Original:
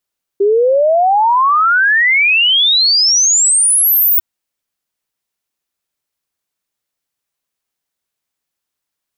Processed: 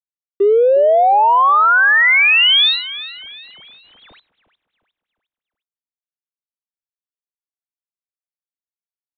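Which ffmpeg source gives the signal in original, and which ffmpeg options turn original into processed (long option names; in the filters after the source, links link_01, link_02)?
-f lavfi -i "aevalsrc='0.398*clip(min(t,3.8-t)/0.01,0,1)*sin(2*PI*390*3.8/log(16000/390)*(exp(log(16000/390)*t/3.8)-1))':duration=3.8:sample_rate=44100"
-af "aeval=exprs='sgn(val(0))*max(abs(val(0))-0.0141,0)':channel_layout=same,aecho=1:1:357|714|1071|1428:0.158|0.065|0.0266|0.0109,aresample=8000,aresample=44100"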